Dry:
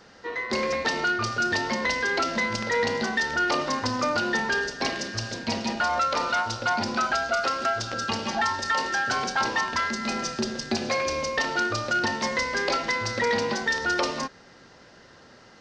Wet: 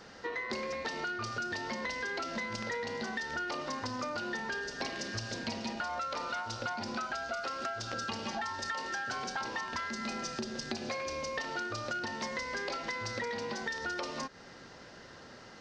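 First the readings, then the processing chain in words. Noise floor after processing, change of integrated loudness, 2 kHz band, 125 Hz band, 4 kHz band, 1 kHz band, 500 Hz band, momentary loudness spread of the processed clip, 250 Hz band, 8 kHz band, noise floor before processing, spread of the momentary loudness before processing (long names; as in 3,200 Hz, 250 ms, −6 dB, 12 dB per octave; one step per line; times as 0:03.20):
−52 dBFS, −10.5 dB, −11.0 dB, −9.0 dB, −10.5 dB, −11.0 dB, −10.5 dB, 2 LU, −10.0 dB, −10.0 dB, −52 dBFS, 4 LU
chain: downward compressor 10 to 1, threshold −34 dBFS, peak gain reduction 14 dB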